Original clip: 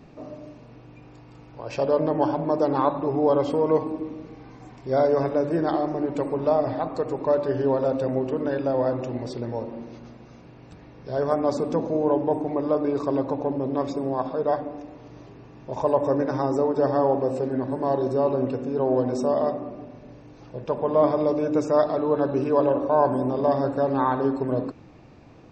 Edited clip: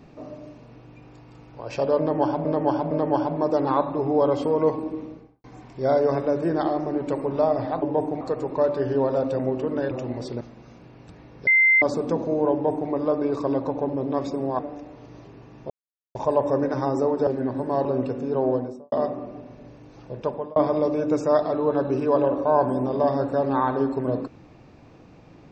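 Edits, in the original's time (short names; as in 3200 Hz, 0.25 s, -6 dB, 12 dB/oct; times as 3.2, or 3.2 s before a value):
1.99–2.45 loop, 3 plays
4.1–4.52 studio fade out
8.6–8.96 cut
9.46–10.04 cut
11.1–11.45 bleep 2080 Hz -13.5 dBFS
12.15–12.54 copy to 6.9
14.22–14.61 cut
15.72 insert silence 0.45 s
16.84–17.4 cut
17.98–18.29 cut
18.86–19.36 studio fade out
20.7–21 fade out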